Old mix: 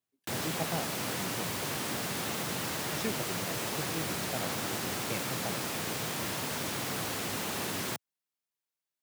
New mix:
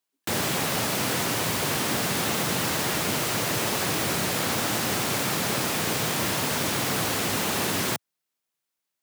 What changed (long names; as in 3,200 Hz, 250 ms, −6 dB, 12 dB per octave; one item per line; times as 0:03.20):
speech: add Chebyshev high-pass with heavy ripple 220 Hz, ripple 6 dB
background +8.5 dB